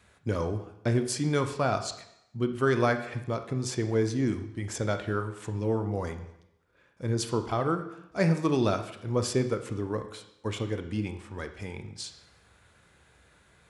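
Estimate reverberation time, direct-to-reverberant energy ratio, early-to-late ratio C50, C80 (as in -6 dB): 0.80 s, 7.5 dB, 10.0 dB, 12.5 dB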